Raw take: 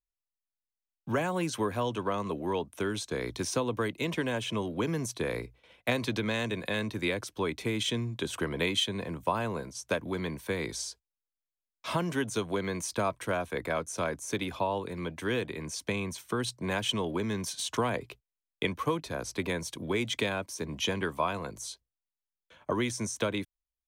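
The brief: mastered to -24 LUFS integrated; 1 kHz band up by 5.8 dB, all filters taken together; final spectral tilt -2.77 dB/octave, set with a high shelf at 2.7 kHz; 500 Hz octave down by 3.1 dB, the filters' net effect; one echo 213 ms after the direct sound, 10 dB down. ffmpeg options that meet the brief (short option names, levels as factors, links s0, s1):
-af "equalizer=f=500:t=o:g=-6,equalizer=f=1000:t=o:g=7,highshelf=f=2700:g=7.5,aecho=1:1:213:0.316,volume=1.88"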